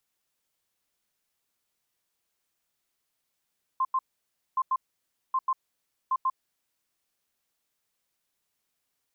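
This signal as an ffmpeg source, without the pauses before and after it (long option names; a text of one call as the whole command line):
ffmpeg -f lavfi -i "aevalsrc='0.0794*sin(2*PI*1050*t)*clip(min(mod(mod(t,0.77),0.14),0.05-mod(mod(t,0.77),0.14))/0.005,0,1)*lt(mod(t,0.77),0.28)':duration=3.08:sample_rate=44100" out.wav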